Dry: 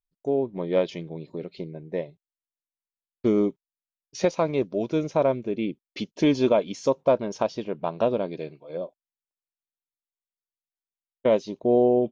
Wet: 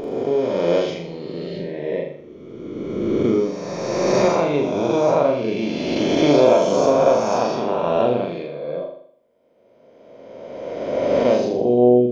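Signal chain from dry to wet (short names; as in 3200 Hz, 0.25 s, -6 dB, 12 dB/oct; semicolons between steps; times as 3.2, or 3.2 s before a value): spectral swells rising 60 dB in 2.34 s; on a send: flutter echo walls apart 7 m, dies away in 0.61 s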